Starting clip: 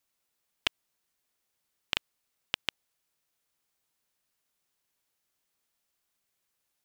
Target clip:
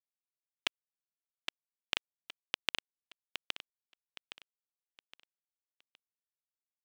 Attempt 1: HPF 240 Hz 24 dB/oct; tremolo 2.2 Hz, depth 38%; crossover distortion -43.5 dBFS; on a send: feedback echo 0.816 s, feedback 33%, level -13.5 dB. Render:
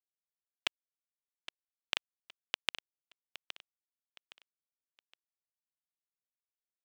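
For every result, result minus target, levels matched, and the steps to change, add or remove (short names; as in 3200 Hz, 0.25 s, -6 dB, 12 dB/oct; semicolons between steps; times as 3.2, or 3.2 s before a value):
125 Hz band -8.0 dB; echo-to-direct -7.5 dB
change: HPF 100 Hz 24 dB/oct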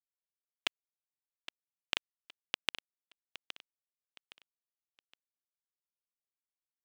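echo-to-direct -7.5 dB
change: feedback echo 0.816 s, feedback 33%, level -6 dB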